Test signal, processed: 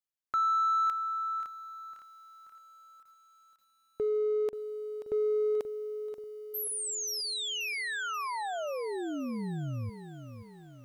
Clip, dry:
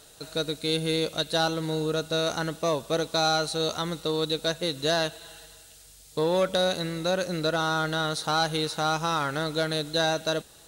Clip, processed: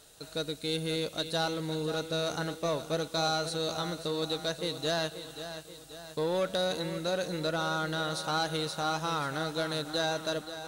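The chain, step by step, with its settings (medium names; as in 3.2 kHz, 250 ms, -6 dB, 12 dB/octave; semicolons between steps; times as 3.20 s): in parallel at -8 dB: hard clipper -26 dBFS; on the sum: bit-crushed delay 532 ms, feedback 55%, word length 9-bit, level -11 dB; trim -7.5 dB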